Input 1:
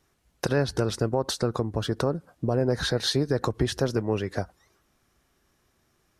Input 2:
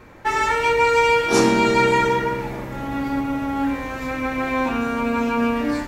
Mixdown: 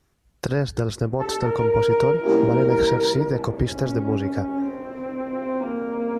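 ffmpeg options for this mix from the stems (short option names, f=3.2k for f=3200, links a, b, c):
-filter_complex "[0:a]lowshelf=f=200:g=7,volume=-1dB[a];[1:a]bandpass=f=410:t=q:w=1.6:csg=0,adelay=950,volume=1.5dB[b];[a][b]amix=inputs=2:normalize=0"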